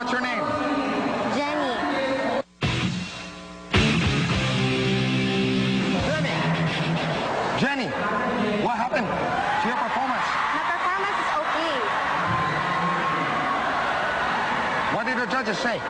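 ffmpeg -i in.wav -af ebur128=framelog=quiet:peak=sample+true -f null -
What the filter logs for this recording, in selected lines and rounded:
Integrated loudness:
  I:         -23.7 LUFS
  Threshold: -33.8 LUFS
Loudness range:
  LRA:         1.7 LU
  Threshold: -43.7 LUFS
  LRA low:   -24.5 LUFS
  LRA high:  -22.8 LUFS
Sample peak:
  Peak:       -9.6 dBFS
True peak:
  Peak:       -9.6 dBFS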